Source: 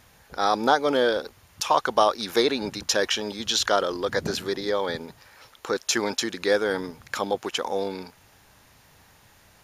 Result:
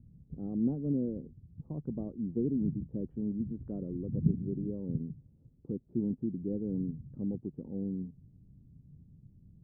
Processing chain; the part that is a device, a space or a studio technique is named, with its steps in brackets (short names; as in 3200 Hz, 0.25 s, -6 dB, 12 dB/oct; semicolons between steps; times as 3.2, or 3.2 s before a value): the neighbour's flat through the wall (LPF 250 Hz 24 dB/oct; bell 150 Hz +8 dB 0.57 oct); 3.1–3.71 bell 2500 Hz +9.5 dB 2.6 oct; gain +2.5 dB